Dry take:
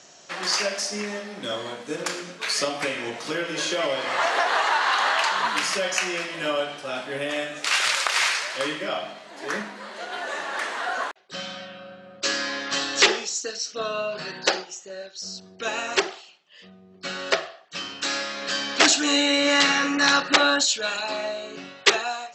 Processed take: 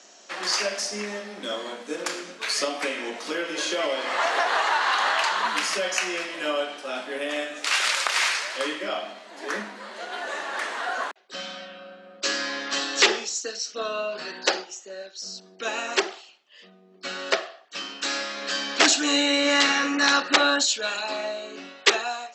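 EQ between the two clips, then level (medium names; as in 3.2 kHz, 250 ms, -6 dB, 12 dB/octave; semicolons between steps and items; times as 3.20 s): steep high-pass 200 Hz 48 dB/octave; -1.0 dB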